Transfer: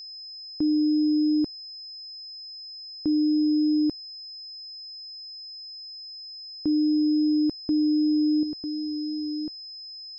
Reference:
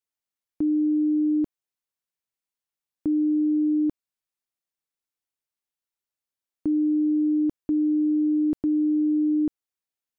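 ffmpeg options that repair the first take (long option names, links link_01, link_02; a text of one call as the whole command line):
ffmpeg -i in.wav -af "bandreject=frequency=5100:width=30,asetnsamples=nb_out_samples=441:pad=0,asendcmd='8.43 volume volume 8.5dB',volume=0dB" out.wav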